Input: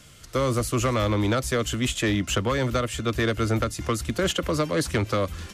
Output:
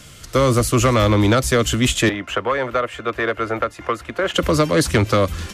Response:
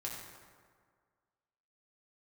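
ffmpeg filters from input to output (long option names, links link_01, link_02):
-filter_complex "[0:a]asettb=1/sr,asplit=3[link_01][link_02][link_03];[link_01]atrim=end=2.094[link_04];[link_02]atrim=start=2.09:end=4.34,asetpts=PTS-STARTPTS,afade=type=in:duration=0.004:curve=qsin,afade=type=out:start_time=2.246:duration=0.004:curve=qsin,acrossover=split=410 2500:gain=0.141 1 0.112[link_05][link_06][link_07];[link_05][link_06][link_07]amix=inputs=3:normalize=0[link_08];[link_03]atrim=start=4.336[link_09];[link_04][link_08]acrossfade=duration=0.004:curve1=hsin:curve2=qsin[link_10];[link_10][link_09]acrossfade=duration=0.004:curve1=qsin:curve2=hsin,volume=8dB"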